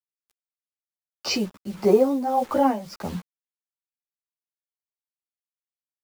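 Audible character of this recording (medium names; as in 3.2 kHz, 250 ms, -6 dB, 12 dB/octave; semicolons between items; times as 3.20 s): a quantiser's noise floor 8-bit, dither none; tremolo triangle 1.7 Hz, depth 75%; a shimmering, thickened sound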